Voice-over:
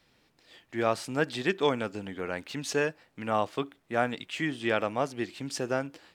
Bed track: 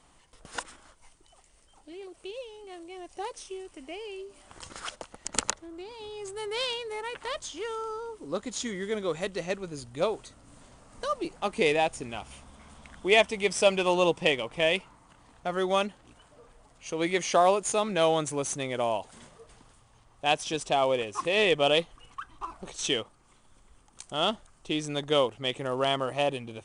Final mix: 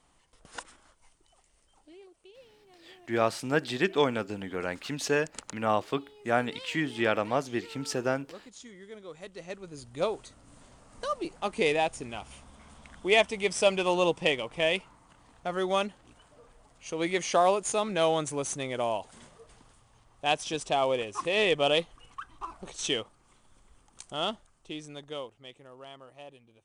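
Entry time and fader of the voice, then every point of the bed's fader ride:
2.35 s, +1.0 dB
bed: 1.82 s -5.5 dB
2.29 s -14.5 dB
9.07 s -14.5 dB
10.01 s -1.5 dB
24.01 s -1.5 dB
25.78 s -20.5 dB

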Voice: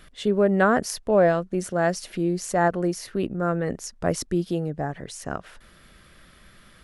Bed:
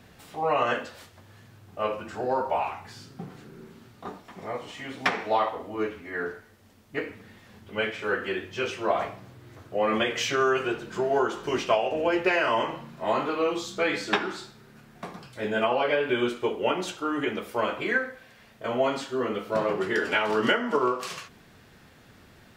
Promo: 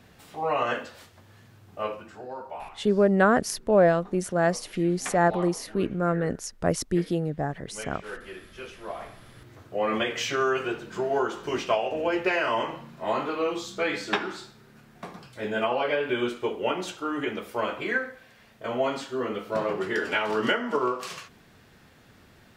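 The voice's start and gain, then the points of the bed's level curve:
2.60 s, -0.5 dB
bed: 1.8 s -1.5 dB
2.29 s -11.5 dB
8.96 s -11.5 dB
9.41 s -1.5 dB

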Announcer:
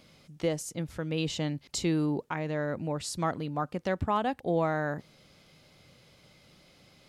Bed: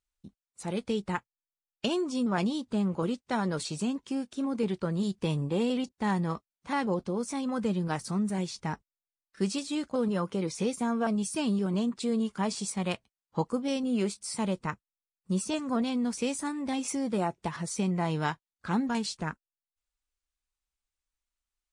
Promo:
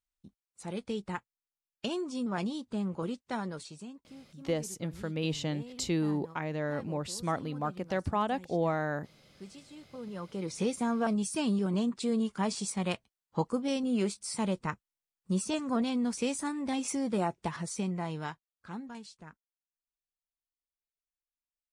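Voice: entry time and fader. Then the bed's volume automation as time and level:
4.05 s, -2.0 dB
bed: 3.34 s -5 dB
4.07 s -18.5 dB
9.82 s -18.5 dB
10.61 s -1 dB
17.5 s -1 dB
19.14 s -16.5 dB

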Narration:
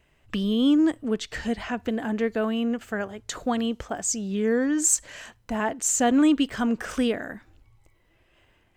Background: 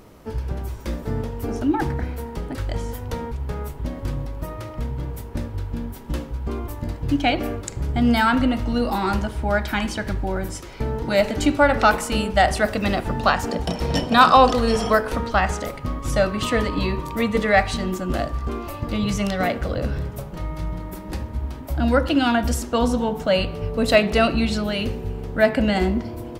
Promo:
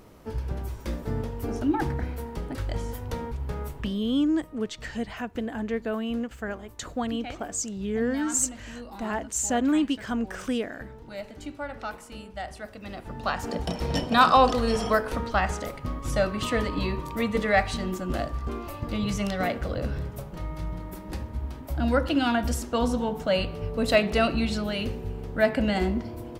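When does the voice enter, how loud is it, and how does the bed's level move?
3.50 s, -4.0 dB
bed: 3.77 s -4 dB
4 s -19 dB
12.79 s -19 dB
13.56 s -5 dB

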